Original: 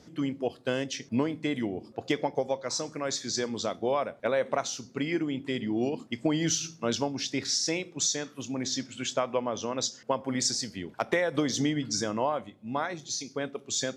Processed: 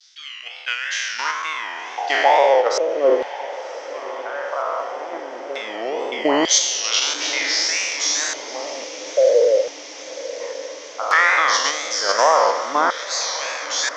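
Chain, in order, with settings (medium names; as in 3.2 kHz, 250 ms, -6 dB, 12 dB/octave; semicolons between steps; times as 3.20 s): spectral sustain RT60 1.97 s; peaking EQ 1.3 kHz +14 dB 2.3 oct; in parallel at +0.5 dB: level held to a coarse grid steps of 19 dB; on the sum: wow and flutter 110 cents; LFO low-pass square 0.18 Hz 560–5900 Hz; 8.84–10.40 s: vowel filter e; LFO high-pass saw down 0.31 Hz 330–3800 Hz; on a send: echo that smears into a reverb 1058 ms, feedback 71%, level -15 dB; on the sum: trim -7.5 dB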